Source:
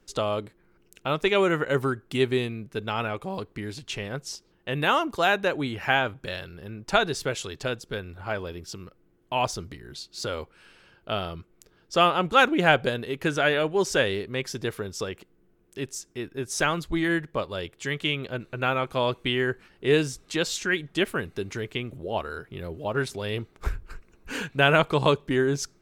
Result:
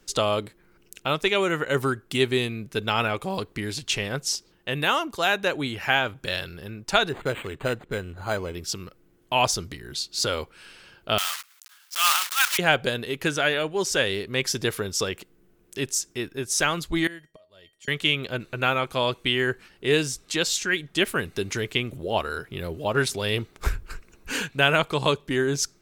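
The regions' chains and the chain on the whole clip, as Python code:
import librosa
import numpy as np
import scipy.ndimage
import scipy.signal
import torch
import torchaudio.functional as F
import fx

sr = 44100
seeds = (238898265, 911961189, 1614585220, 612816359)

y = fx.chain(x, sr, fx.lowpass(hz=7400.0, slope=12),
    fx.high_shelf(hz=4800.0, db=-11.5),
    fx.resample_linear(factor=8), at=(7.09, 8.55))
y = fx.chain(y, sr, fx.block_float(bits=3),
    fx.highpass(hz=1100.0, slope=24),
    fx.transient(attack_db=-9, sustain_db=8), at=(11.18, 12.59))
y = fx.chain(y, sr, fx.auto_swell(attack_ms=441.0),
    fx.comb_fb(f0_hz=630.0, decay_s=0.24, harmonics='odd', damping=0.0, mix_pct=90), at=(17.07, 17.88))
y = fx.high_shelf(y, sr, hz=2500.0, db=8.5)
y = fx.rider(y, sr, range_db=3, speed_s=0.5)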